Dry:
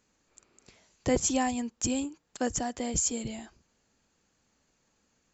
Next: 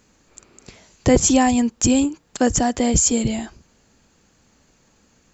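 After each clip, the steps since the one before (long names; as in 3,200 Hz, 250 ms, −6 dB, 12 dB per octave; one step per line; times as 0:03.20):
low-shelf EQ 320 Hz +4.5 dB
in parallel at −1.5 dB: brickwall limiter −22.5 dBFS, peak gain reduction 10.5 dB
on the sum: level +7 dB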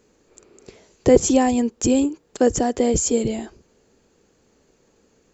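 parametric band 420 Hz +12.5 dB 0.91 octaves
level −5.5 dB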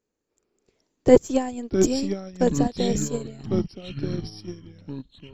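gain on one half-wave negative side −3 dB
delay with pitch and tempo change per echo 294 ms, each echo −5 semitones, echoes 3
expander for the loud parts 2.5 to 1, over −26 dBFS
level +2.5 dB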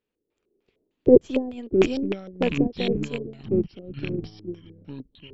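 loose part that buzzes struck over −25 dBFS, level −20 dBFS
auto-filter low-pass square 3.3 Hz 410–3,100 Hz
level −3.5 dB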